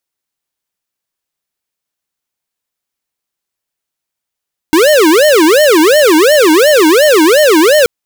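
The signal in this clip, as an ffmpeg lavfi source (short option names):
-f lavfi -i "aevalsrc='0.473*(2*lt(mod((460*t-154/(2*PI*2.8)*sin(2*PI*2.8*t)),1),0.5)-1)':d=3.13:s=44100"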